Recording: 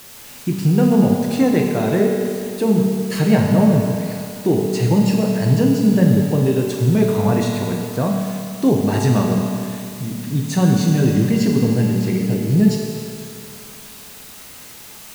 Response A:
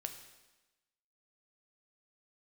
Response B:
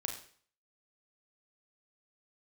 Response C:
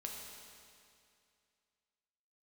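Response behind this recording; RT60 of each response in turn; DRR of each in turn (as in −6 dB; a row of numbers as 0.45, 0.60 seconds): C; 1.1, 0.50, 2.4 seconds; 5.5, 2.0, −1.0 decibels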